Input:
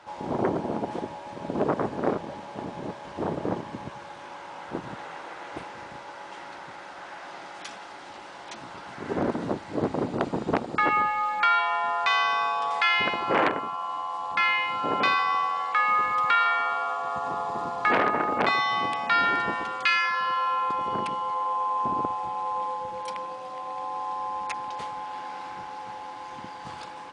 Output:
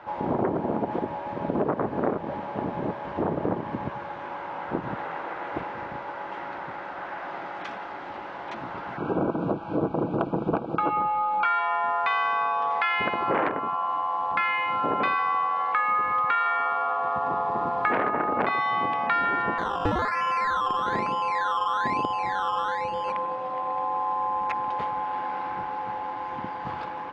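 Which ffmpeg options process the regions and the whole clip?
ffmpeg -i in.wav -filter_complex "[0:a]asettb=1/sr,asplit=3[link_01][link_02][link_03];[link_01]atrim=end=8.974[link_04];[link_02]atrim=start=8.97:end=11.45,asetpts=PTS-STARTPTS,afade=type=in:duration=0.004:curve=qsin,afade=type=out:start_time=2.476:duration=0.004:curve=qsin,asuperstop=centerf=1900:order=12:qfactor=3,highshelf=frequency=4700:gain=-5.5,aecho=1:1:6.1:0.37,atrim=end_sample=109368[link_05];[link_03]atrim=start=11.446[link_06];[link_04][link_05]acrossfade=duration=0.004:curve1=hsin:curve2=qsin[link_07];[link_07][link_06]acrossfade=duration=0.004:curve1=qsin:curve2=hsin,asettb=1/sr,asplit=3[link_08][link_09][link_10];[link_08]atrim=end=19.584[link_11];[link_09]atrim=start=19.58:end=23.12,asetpts=PTS-STARTPTS,afade=type=in:duration=0.004:curve=qsin,afade=type=out:start_time=3.536:duration=0.004:curve=qsin,lowpass=2800,acrusher=samples=16:mix=1:aa=0.000001:lfo=1:lforange=9.6:lforate=1.1[link_12];[link_10]atrim=start=23.116[link_13];[link_11][link_12]acrossfade=duration=0.004:curve1=hsin:curve2=qsin[link_14];[link_14][link_13]acrossfade=duration=0.004:curve1=qsin:curve2=hsin,lowpass=2000,acompressor=threshold=-30dB:ratio=3,volume=6.5dB" out.wav

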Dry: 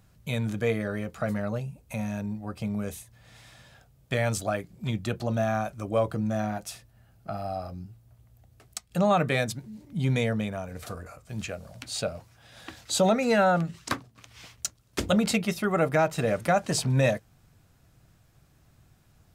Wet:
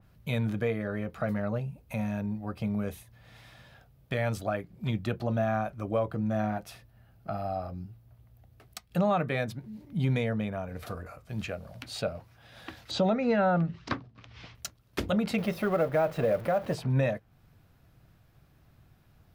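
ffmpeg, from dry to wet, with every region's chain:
ffmpeg -i in.wav -filter_complex "[0:a]asettb=1/sr,asplit=3[link_01][link_02][link_03];[link_01]atrim=end=12.914[link_04];[link_02]atrim=start=12.91:end=14.55,asetpts=PTS-STARTPTS,afade=type=in:duration=0.004:curve=qsin,afade=type=out:start_time=1.636:duration=0.004:curve=qsin,lowpass=frequency=5800:width=0.5412,lowpass=frequency=5800:width=1.3066,lowshelf=frequency=400:gain=5[link_05];[link_03]atrim=start=14.546[link_06];[link_04][link_05]acrossfade=duration=0.004:curve1=hsin:curve2=qsin[link_07];[link_07][link_06]acrossfade=duration=0.004:curve1=qsin:curve2=hsin,asettb=1/sr,asplit=3[link_08][link_09][link_10];[link_08]atrim=end=15.384[link_11];[link_09]atrim=start=15.38:end=16.75,asetpts=PTS-STARTPTS,afade=type=in:duration=0.004:curve=qsin,afade=type=out:start_time=1.366:duration=0.004:curve=qsin,aeval=exprs='val(0)+0.5*0.0211*sgn(val(0))':channel_layout=same,equalizer=frequency=550:width_type=o:width=0.53:gain=8.5,acrusher=bits=5:mode=log:mix=0:aa=0.000001[link_12];[link_10]atrim=start=16.746[link_13];[link_11][link_12]acrossfade=duration=0.004:curve1=hsin:curve2=qsin[link_14];[link_14][link_13]acrossfade=duration=0.004:curve1=qsin:curve2=hsin,equalizer=frequency=7600:width_type=o:width=1:gain=-11,alimiter=limit=-17.5dB:level=0:latency=1:release=432,adynamicequalizer=threshold=0.00355:dfrequency=2900:dqfactor=0.7:tfrequency=2900:tqfactor=0.7:attack=5:release=100:ratio=0.375:range=3.5:mode=cutabove:tftype=highshelf" out.wav

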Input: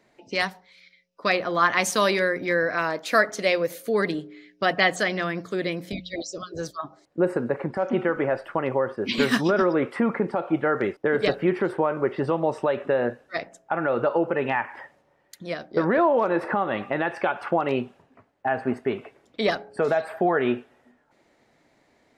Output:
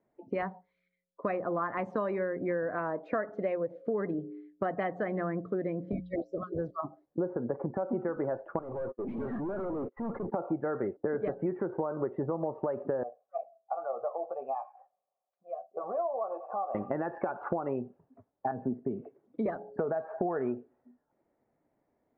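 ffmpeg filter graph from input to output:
ffmpeg -i in.wav -filter_complex "[0:a]asettb=1/sr,asplit=3[link_01][link_02][link_03];[link_01]atrim=end=8.594[link_04];[link_02]atrim=start=8.59:end=10.32,asetpts=PTS-STARTPTS,afade=type=in:duration=0.004:curve=qsin,afade=type=out:start_time=1.726:duration=0.004:curve=qsin,agate=range=-25dB:threshold=-34dB:ratio=16:release=100:detection=peak,highpass=120,lowpass=3100,aeval=exprs='(tanh(50.1*val(0)+0.25)-tanh(0.25))/50.1':channel_layout=same[link_05];[link_03]atrim=start=10.316[link_06];[link_04][link_05]acrossfade=duration=0.004:curve1=hsin:curve2=qsin[link_07];[link_07][link_06]acrossfade=duration=0.004:curve1=qsin:curve2=hsin,asettb=1/sr,asplit=3[link_08][link_09][link_10];[link_08]atrim=end=13.034[link_11];[link_09]atrim=start=13.03:end=16.75,asetpts=PTS-STARTPTS,afade=type=in:duration=0.004:curve=qsin,afade=type=out:start_time=3.716:duration=0.004:curve=qsin,asplit=3[link_12][link_13][link_14];[link_12]bandpass=frequency=730:width_type=q:width=8,volume=0dB[link_15];[link_13]bandpass=frequency=1090:width_type=q:width=8,volume=-6dB[link_16];[link_14]bandpass=frequency=2440:width_type=q:width=8,volume=-9dB[link_17];[link_15][link_16][link_17]amix=inputs=3:normalize=0,equalizer=frequency=310:width=5.2:gain=-13,asplit=2[link_18][link_19];[link_19]adelay=15,volume=-8.5dB[link_20];[link_18][link_20]amix=inputs=2:normalize=0,atrim=end_sample=164052[link_21];[link_10]atrim=start=16.746[link_22];[link_11][link_21]acrossfade=duration=0.004:curve1=hsin:curve2=qsin[link_23];[link_23][link_22]acrossfade=duration=0.004:curve1=qsin:curve2=hsin,asettb=1/sr,asplit=3[link_24][link_25][link_26];[link_24]atrim=end=18.514[link_27];[link_25]atrim=start=18.51:end=19.46,asetpts=PTS-STARTPTS,afade=type=in:duration=0.004:curve=qsin,afade=type=out:start_time=0.946:duration=0.004:curve=qsin,highpass=160,bass=frequency=250:gain=7,treble=frequency=4000:gain=1,acrossover=split=360|3000[link_28][link_29][link_30];[link_29]acompressor=threshold=-57dB:ratio=1.5:attack=3.2:release=140:knee=2.83:detection=peak[link_31];[link_28][link_31][link_30]amix=inputs=3:normalize=0[link_32];[link_26]atrim=start=19.456[link_33];[link_27][link_32]acrossfade=duration=0.004:curve1=hsin:curve2=qsin[link_34];[link_34][link_33]acrossfade=duration=0.004:curve1=qsin:curve2=hsin,lowpass=1000,afftdn=noise_reduction=14:noise_floor=-44,acompressor=threshold=-31dB:ratio=6,volume=2dB" out.wav

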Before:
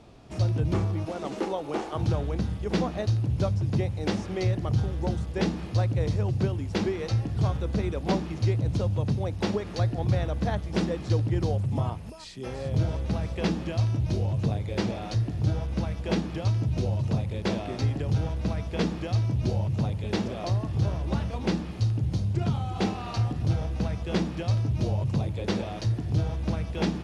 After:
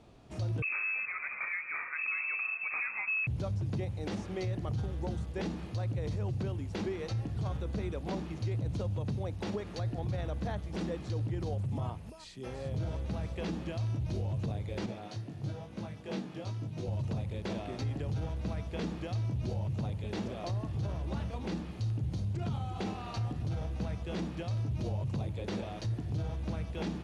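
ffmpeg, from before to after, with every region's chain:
ffmpeg -i in.wav -filter_complex "[0:a]asettb=1/sr,asplit=3[link_01][link_02][link_03];[link_01]atrim=end=0.624[link_04];[link_02]atrim=start=0.62:end=3.27,asetpts=PTS-STARTPTS,afade=type=in:duration=0.004:curve=qsin,afade=type=out:start_time=2.646:duration=0.004:curve=qsin,equalizer=frequency=1500:width=3.6:gain=13,lowpass=frequency=2300:width_type=q:width=0.5098,lowpass=frequency=2300:width_type=q:width=0.6013,lowpass=frequency=2300:width_type=q:width=0.9,lowpass=frequency=2300:width_type=q:width=2.563,afreqshift=-2700[link_05];[link_03]atrim=start=3.266[link_06];[link_04][link_05]acrossfade=duration=0.004:curve1=hsin:curve2=qsin[link_07];[link_07][link_06]acrossfade=duration=0.004:curve1=qsin:curve2=hsin,asettb=1/sr,asplit=3[link_08][link_09][link_10];[link_08]atrim=end=14.864[link_11];[link_09]atrim=start=14.86:end=16.88,asetpts=PTS-STARTPTS,afade=type=in:duration=0.004:curve=qsin,afade=type=out:start_time=2.016:duration=0.004:curve=qsin,highpass=frequency=110:width=0.5412,highpass=frequency=110:width=1.3066,flanger=delay=18.5:depth=3:speed=1[link_12];[link_10]atrim=start=16.876[link_13];[link_11][link_12]acrossfade=duration=0.004:curve1=hsin:curve2=qsin[link_14];[link_14][link_13]acrossfade=duration=0.004:curve1=qsin:curve2=hsin,equalizer=frequency=5200:width=6.8:gain=-3.5,alimiter=limit=-21dB:level=0:latency=1:release=20,volume=-6dB" out.wav

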